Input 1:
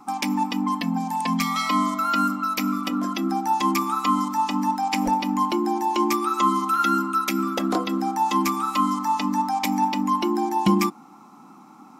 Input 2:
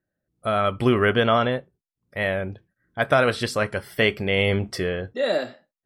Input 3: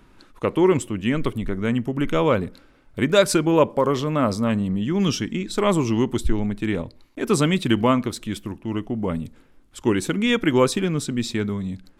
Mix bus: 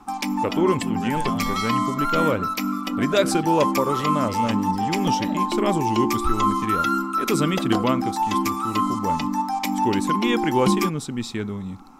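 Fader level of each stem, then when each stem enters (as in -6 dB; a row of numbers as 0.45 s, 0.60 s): -1.0 dB, -17.5 dB, -3.5 dB; 0.00 s, 0.00 s, 0.00 s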